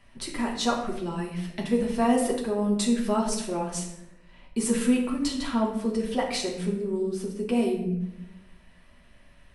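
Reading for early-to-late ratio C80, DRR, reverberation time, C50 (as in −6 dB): 8.5 dB, −1.5 dB, 0.90 s, 5.5 dB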